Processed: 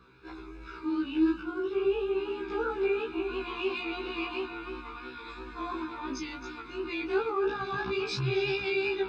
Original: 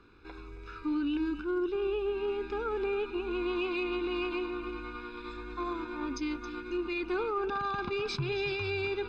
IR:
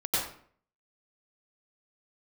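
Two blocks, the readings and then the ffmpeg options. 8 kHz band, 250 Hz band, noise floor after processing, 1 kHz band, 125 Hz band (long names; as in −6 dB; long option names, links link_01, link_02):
can't be measured, +1.0 dB, −45 dBFS, +0.5 dB, +2.5 dB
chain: -af "highpass=60,flanger=delay=16:depth=6.6:speed=2.9,afftfilt=real='re*1.73*eq(mod(b,3),0)':imag='im*1.73*eq(mod(b,3),0)':win_size=2048:overlap=0.75,volume=7.5dB"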